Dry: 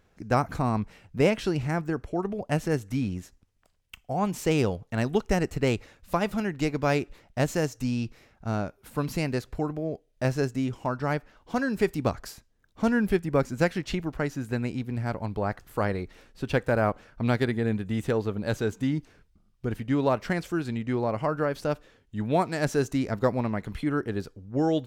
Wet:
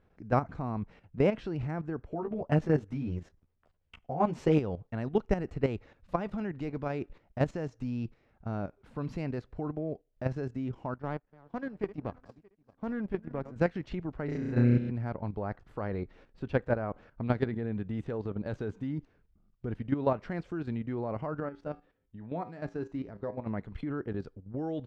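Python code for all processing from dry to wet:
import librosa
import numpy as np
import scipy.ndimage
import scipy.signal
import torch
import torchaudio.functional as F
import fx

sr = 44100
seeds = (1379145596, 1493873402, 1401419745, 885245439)

y = fx.chain(x, sr, fx.peak_eq(hz=560.0, db=2.5, octaves=2.9),
    fx.doubler(ms=13.0, db=-2.5), at=(2.07, 4.58))
y = fx.chain(y, sr, fx.reverse_delay_fb(ms=311, feedback_pct=43, wet_db=-14),
    fx.high_shelf(hz=2000.0, db=-5.5),
    fx.power_curve(exponent=1.4), at=(10.94, 13.56))
y = fx.chain(y, sr, fx.high_shelf(hz=9400.0, db=-9.5),
    fx.room_flutter(wall_m=5.7, rt60_s=1.4), at=(14.25, 14.9))
y = fx.chain(y, sr, fx.high_shelf(hz=4700.0, db=-6.0),
    fx.comb_fb(f0_hz=57.0, decay_s=0.28, harmonics='odd', damping=0.0, mix_pct=70), at=(21.4, 23.47))
y = scipy.signal.sosfilt(scipy.signal.butter(2, 4600.0, 'lowpass', fs=sr, output='sos'), y)
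y = fx.level_steps(y, sr, step_db=11)
y = fx.high_shelf(y, sr, hz=2100.0, db=-11.0)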